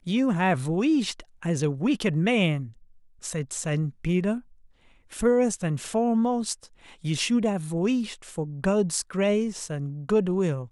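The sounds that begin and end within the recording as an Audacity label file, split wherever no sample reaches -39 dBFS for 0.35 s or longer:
3.230000	4.400000	sound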